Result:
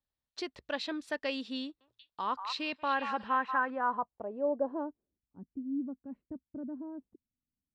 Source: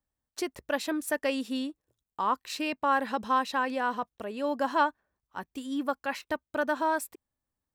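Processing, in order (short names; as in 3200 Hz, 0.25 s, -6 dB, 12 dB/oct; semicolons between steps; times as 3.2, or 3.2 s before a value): low-pass sweep 4100 Hz -> 240 Hz, 2.66–5.37; 1.62–3.7 delay with a stepping band-pass 0.186 s, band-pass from 1100 Hz, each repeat 1.4 oct, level -6 dB; gain -6.5 dB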